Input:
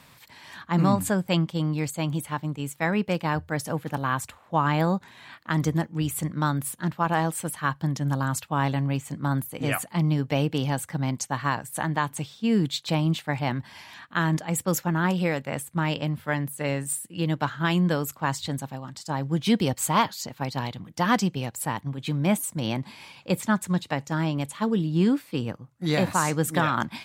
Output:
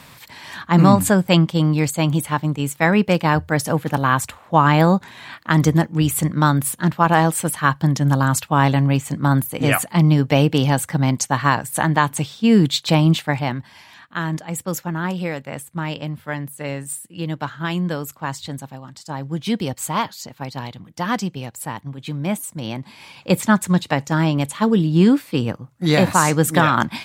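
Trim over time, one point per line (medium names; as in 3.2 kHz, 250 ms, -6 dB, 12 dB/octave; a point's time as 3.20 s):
13.20 s +9 dB
13.70 s 0 dB
22.85 s 0 dB
23.30 s +8 dB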